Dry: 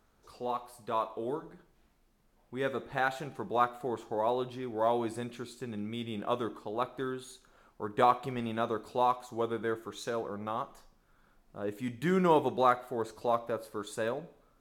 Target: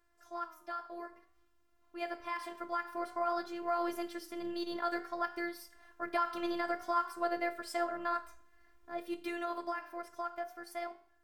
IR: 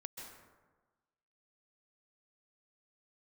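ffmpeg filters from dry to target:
-af "equalizer=frequency=1000:width_type=o:width=0.92:gain=4.5,alimiter=limit=-21dB:level=0:latency=1:release=93,dynaudnorm=framelen=320:gausssize=21:maxgain=7dB,asetrate=57330,aresample=44100,afftfilt=real='hypot(re,im)*cos(PI*b)':imag='0':win_size=512:overlap=0.75,flanger=delay=10:depth=3.7:regen=86:speed=0.54:shape=sinusoidal"

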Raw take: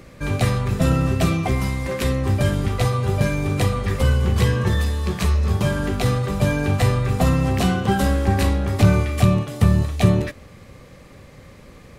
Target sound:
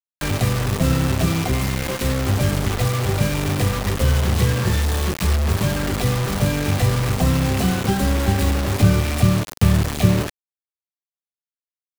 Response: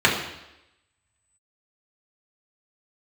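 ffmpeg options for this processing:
-filter_complex "[0:a]acrusher=bits=3:mix=0:aa=0.000001,acrossover=split=420[link_01][link_02];[link_02]acompressor=threshold=-23dB:ratio=6[link_03];[link_01][link_03]amix=inputs=2:normalize=0"

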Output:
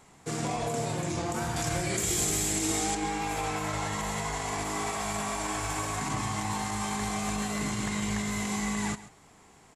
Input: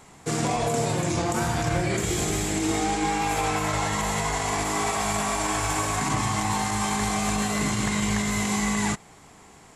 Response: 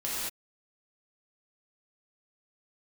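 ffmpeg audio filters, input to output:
-filter_complex "[0:a]asettb=1/sr,asplit=3[link_01][link_02][link_03];[link_01]atrim=end=1.564[link_04];[link_02]atrim=start=1.56:end=2.95,asetpts=PTS-STARTPTS,afade=type=in:duration=0.004:curve=qsin,afade=type=out:start_time=1.386:duration=0.004:curve=qsin,highshelf=frequency=4400:gain=12[link_05];[link_03]atrim=start=2.946[link_06];[link_04][link_05]acrossfade=duration=0.004:curve1=hsin:curve2=qsin[link_07];[link_07][link_06]acrossfade=duration=0.004:curve1=qsin:curve2=hsin,aecho=1:1:135:0.15,volume=-6.5dB"

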